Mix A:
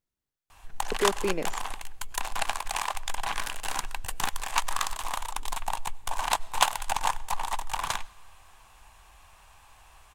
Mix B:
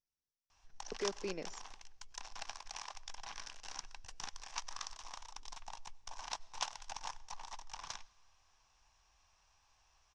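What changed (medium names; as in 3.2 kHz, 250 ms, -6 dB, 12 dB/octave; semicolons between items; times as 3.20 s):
background -6.5 dB; master: add four-pole ladder low-pass 6 kHz, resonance 75%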